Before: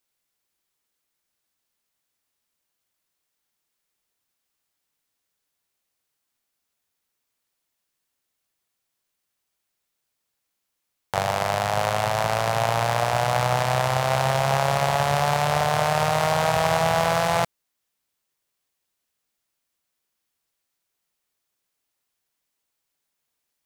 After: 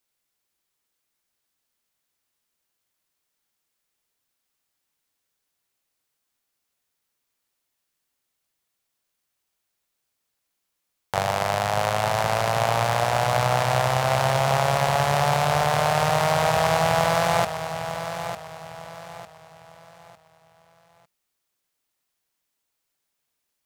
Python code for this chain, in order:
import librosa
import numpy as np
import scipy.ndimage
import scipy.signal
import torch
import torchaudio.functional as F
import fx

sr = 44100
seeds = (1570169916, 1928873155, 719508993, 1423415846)

y = fx.echo_feedback(x, sr, ms=902, feedback_pct=35, wet_db=-9.5)